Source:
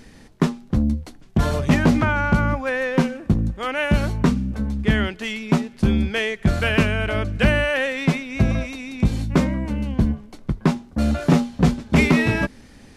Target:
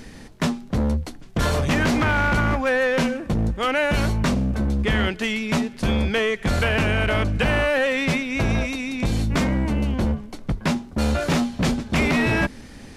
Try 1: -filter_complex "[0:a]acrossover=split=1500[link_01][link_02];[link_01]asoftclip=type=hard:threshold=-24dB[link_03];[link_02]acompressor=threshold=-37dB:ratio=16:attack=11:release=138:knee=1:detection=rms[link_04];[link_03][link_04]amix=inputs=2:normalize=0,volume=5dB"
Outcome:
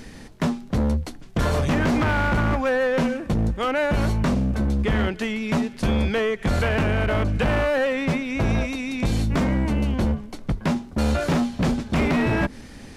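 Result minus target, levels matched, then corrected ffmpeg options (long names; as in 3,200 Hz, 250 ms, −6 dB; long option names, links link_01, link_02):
downward compressor: peak gain reduction +8 dB
-filter_complex "[0:a]acrossover=split=1500[link_01][link_02];[link_01]asoftclip=type=hard:threshold=-24dB[link_03];[link_02]acompressor=threshold=-28.5dB:ratio=16:attack=11:release=138:knee=1:detection=rms[link_04];[link_03][link_04]amix=inputs=2:normalize=0,volume=5dB"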